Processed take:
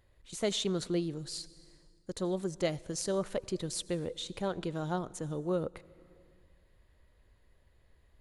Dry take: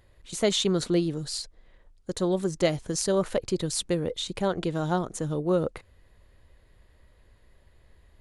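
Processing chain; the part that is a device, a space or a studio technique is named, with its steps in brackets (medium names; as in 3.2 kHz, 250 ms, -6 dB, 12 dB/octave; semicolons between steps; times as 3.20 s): compressed reverb return (on a send at -12 dB: reverberation RT60 1.5 s, pre-delay 76 ms + compression 6:1, threshold -34 dBFS, peak gain reduction 14 dB); on the sum: trim -7.5 dB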